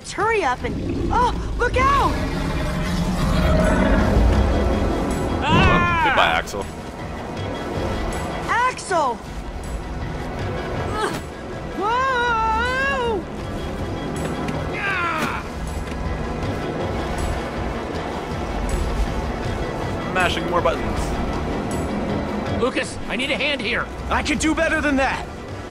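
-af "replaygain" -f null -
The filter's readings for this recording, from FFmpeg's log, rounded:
track_gain = +2.5 dB
track_peak = 0.524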